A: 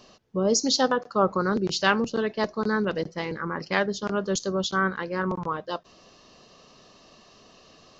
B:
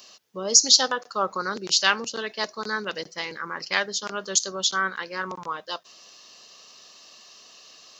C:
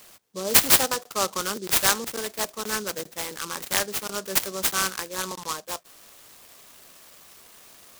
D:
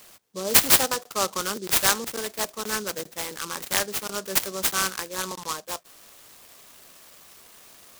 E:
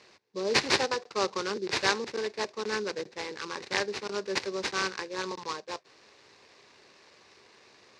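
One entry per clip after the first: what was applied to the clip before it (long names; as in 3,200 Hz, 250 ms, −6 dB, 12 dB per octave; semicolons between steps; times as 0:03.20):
spectral tilt +4.5 dB per octave; level −1.5 dB
short delay modulated by noise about 5,500 Hz, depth 0.11 ms
no processing that can be heard
loudspeaker in its box 110–4,800 Hz, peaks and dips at 170 Hz −7 dB, 260 Hz −5 dB, 400 Hz +5 dB, 670 Hz −7 dB, 1,300 Hz −7 dB, 3,200 Hz −9 dB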